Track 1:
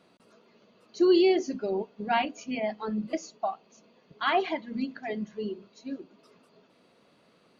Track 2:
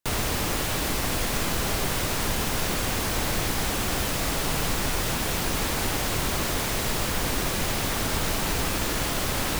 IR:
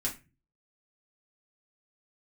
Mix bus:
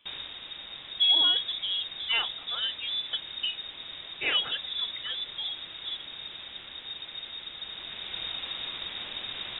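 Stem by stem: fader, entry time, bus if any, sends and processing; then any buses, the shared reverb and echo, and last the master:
-2.0 dB, 0.00 s, no send, dry
-12.5 dB, 0.00 s, send -19 dB, auto duck -7 dB, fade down 0.40 s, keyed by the first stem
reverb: on, RT60 0.30 s, pre-delay 4 ms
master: inverted band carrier 3700 Hz

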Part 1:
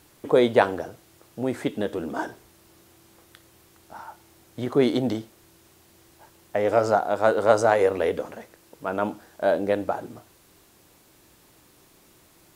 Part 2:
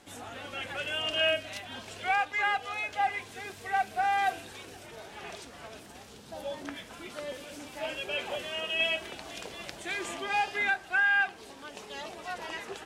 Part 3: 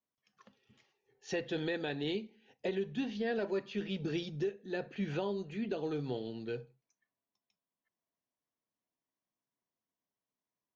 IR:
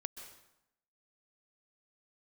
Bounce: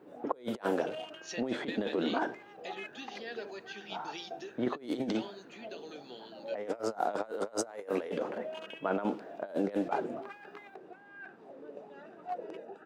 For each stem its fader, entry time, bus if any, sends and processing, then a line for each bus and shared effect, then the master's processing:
-5.0 dB, 0.00 s, no send, low-pass opened by the level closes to 1200 Hz, open at -16 dBFS
-16.0 dB, 0.00 s, no send, Wiener smoothing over 41 samples; negative-ratio compressor -41 dBFS, ratio -1; LFO bell 1.2 Hz 430–1600 Hz +16 dB
-11.5 dB, 0.00 s, no send, tilt +4 dB/oct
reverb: off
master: HPF 170 Hz 24 dB/oct; negative-ratio compressor -33 dBFS, ratio -0.5

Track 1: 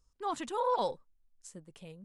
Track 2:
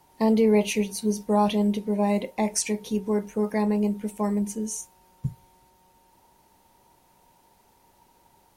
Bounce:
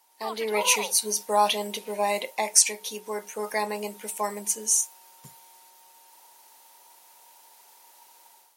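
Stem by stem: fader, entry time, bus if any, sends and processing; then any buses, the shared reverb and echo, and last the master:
+2.5 dB, 0.00 s, no send, elliptic low-pass 4800 Hz; auto duck -14 dB, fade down 0.90 s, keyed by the second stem
-6.5 dB, 0.00 s, no send, dry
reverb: off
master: HPF 670 Hz 12 dB/oct; high shelf 3100 Hz +9 dB; AGC gain up to 10.5 dB

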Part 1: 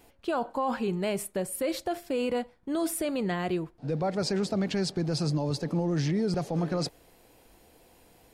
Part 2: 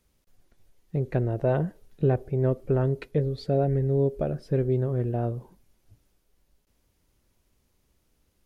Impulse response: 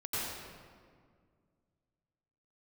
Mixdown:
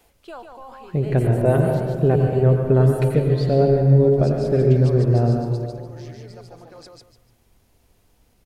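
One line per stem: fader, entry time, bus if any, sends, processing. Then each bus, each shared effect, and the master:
+0.5 dB, 0.00 s, no send, echo send -14 dB, HPF 400 Hz 12 dB/oct; auto duck -12 dB, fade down 0.55 s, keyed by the second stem
+3.0 dB, 0.00 s, send -4.5 dB, no echo send, dry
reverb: on, RT60 2.0 s, pre-delay 83 ms
echo: feedback echo 0.147 s, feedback 26%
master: dry

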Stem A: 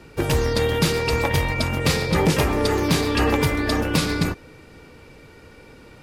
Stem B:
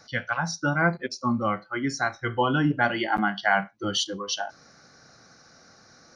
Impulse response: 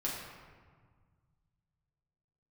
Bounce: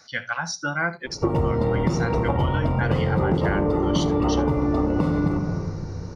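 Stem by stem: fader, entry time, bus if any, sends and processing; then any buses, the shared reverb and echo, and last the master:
+2.0 dB, 1.05 s, send -4 dB, no echo send, polynomial smoothing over 65 samples
-1.0 dB, 0.00 s, no send, echo send -19 dB, tilt shelf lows -4 dB; notches 60/120 Hz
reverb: on, RT60 1.7 s, pre-delay 5 ms
echo: echo 75 ms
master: compressor, threshold -18 dBFS, peak gain reduction 10.5 dB

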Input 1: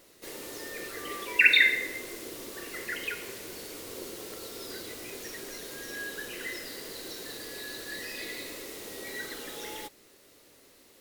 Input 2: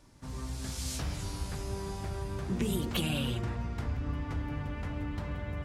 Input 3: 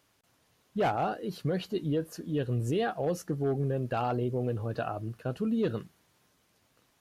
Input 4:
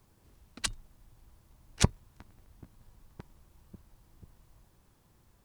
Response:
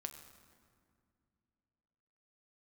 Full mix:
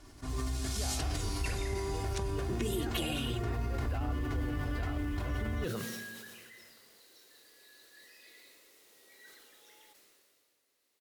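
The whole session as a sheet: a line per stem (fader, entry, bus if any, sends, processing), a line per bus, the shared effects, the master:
-18.0 dB, 0.05 s, bus A, no send, dry
+2.0 dB, 0.00 s, no bus, no send, comb 2.8 ms, depth 73%; compressor, threshold -33 dBFS, peak gain reduction 7.5 dB
-11.5 dB, 0.00 s, bus A, send -9.5 dB, three-band squash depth 40%
-11.0 dB, 0.35 s, bus A, send -6.5 dB, dry
bus A: 0.0 dB, low shelf 450 Hz -12 dB; compressor, threshold -45 dBFS, peak gain reduction 12.5 dB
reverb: on, RT60 2.3 s, pre-delay 6 ms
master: sustainer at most 25 dB/s

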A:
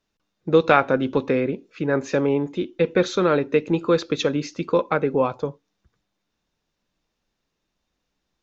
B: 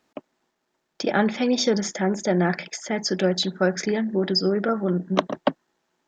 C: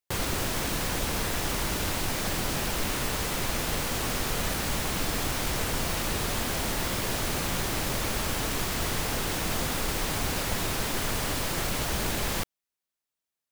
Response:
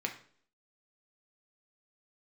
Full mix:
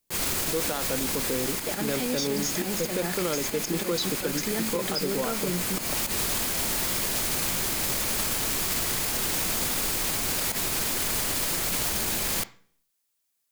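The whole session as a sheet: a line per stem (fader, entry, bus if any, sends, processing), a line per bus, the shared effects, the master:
-6.5 dB, 0.00 s, no bus, no send, median filter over 25 samples
-5.0 dB, 0.60 s, bus A, no send, dry
+2.0 dB, 0.00 s, bus A, send -14.5 dB, auto duck -13 dB, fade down 1.85 s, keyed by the first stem
bus A: 0.0 dB, auto swell 0.119 s; limiter -22 dBFS, peak gain reduction 7.5 dB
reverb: on, RT60 0.55 s, pre-delay 3 ms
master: high shelf 4100 Hz +11 dB; limiter -17.5 dBFS, peak gain reduction 10 dB

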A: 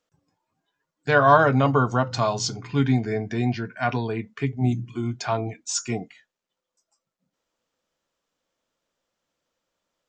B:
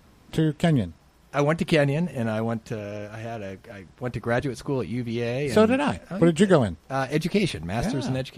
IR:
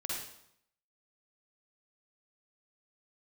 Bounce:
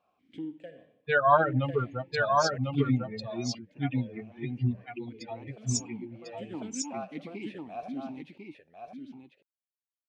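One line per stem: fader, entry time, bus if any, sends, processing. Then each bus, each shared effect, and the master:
-2.0 dB, 0.00 s, no send, echo send -3.5 dB, per-bin expansion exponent 3
-5.0 dB, 0.00 s, send -17.5 dB, echo send -5.5 dB, vowel sequencer 5.2 Hz; auto duck -22 dB, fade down 0.80 s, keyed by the first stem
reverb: on, RT60 0.75 s, pre-delay 44 ms
echo: echo 1.048 s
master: dry

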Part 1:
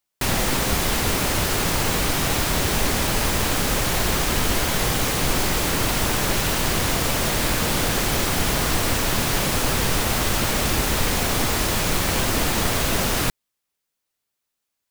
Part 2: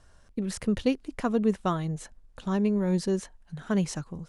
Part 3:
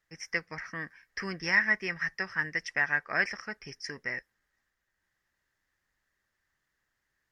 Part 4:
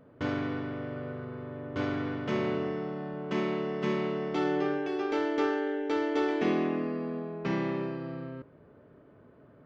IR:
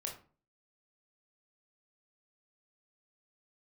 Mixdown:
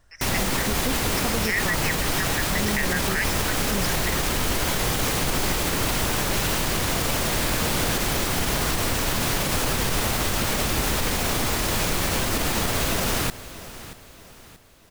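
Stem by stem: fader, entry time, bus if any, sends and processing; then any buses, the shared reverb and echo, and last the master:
-0.5 dB, 0.00 s, no send, echo send -17.5 dB, dry
-2.5 dB, 0.00 s, no send, no echo send, dry
-3.0 dB, 0.00 s, no send, no echo send, tilt shelf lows -9 dB, about 680 Hz; LFO high-pass saw up 2.4 Hz 580–3900 Hz
off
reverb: off
echo: feedback echo 0.631 s, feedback 41%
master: limiter -13.5 dBFS, peak gain reduction 10 dB

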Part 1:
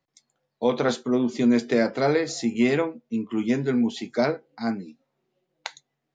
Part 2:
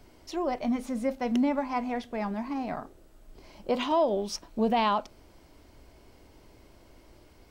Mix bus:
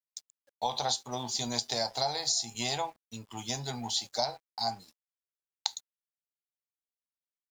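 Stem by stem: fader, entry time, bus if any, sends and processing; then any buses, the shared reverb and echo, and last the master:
+1.0 dB, 0.00 s, no send, EQ curve 110 Hz 0 dB, 170 Hz -16 dB, 300 Hz -22 dB, 490 Hz -16 dB, 810 Hz +8 dB, 1300 Hz -12 dB, 2300 Hz -10 dB, 4100 Hz +12 dB
-16.5 dB, 0.00 s, no send, tilt -3.5 dB/oct; compressor 6:1, threshold -28 dBFS, peak gain reduction 12.5 dB; double band-pass 1500 Hz, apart 2.9 oct; auto duck -10 dB, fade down 1.20 s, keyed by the first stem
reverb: off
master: bit-crush 11-bit; crossover distortion -53.5 dBFS; compressor 5:1, threshold -27 dBFS, peak gain reduction 9 dB

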